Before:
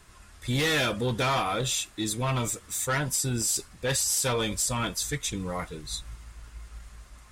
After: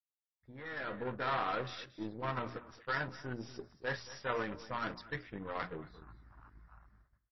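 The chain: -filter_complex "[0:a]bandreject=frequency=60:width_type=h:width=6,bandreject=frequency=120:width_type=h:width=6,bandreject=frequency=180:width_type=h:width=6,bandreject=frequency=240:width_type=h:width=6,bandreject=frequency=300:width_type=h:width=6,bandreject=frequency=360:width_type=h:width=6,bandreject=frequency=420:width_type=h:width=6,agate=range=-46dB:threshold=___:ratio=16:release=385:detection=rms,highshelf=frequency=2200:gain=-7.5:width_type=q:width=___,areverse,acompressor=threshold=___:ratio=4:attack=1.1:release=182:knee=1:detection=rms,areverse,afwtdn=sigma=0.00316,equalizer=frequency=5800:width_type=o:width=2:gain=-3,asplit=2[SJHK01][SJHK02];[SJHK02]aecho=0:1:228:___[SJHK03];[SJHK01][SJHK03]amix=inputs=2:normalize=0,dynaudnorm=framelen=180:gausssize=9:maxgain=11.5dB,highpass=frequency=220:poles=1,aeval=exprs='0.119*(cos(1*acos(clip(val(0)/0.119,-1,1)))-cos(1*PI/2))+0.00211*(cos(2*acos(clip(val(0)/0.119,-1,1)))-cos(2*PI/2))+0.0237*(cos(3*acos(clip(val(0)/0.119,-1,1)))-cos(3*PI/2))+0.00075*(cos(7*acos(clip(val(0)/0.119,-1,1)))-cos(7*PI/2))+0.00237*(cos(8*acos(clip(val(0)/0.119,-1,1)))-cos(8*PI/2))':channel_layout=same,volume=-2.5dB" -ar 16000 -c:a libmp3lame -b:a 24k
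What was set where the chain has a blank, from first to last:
-44dB, 3, -37dB, 0.178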